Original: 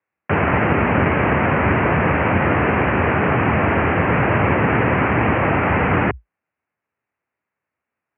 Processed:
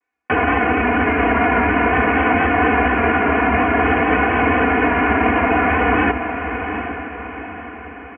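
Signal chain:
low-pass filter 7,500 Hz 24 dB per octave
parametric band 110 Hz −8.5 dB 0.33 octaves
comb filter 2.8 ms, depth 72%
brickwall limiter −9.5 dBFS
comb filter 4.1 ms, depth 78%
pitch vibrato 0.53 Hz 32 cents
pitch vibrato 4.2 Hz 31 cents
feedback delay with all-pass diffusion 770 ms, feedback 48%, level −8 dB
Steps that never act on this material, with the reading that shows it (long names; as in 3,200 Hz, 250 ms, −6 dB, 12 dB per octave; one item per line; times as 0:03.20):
low-pass filter 7,500 Hz: nothing at its input above 2,900 Hz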